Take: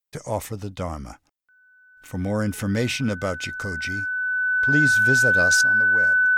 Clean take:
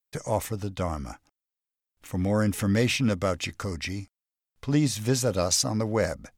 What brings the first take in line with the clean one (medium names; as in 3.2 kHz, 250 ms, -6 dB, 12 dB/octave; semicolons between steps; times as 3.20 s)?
band-stop 1.5 kHz, Q 30; gain correction +11 dB, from 5.61 s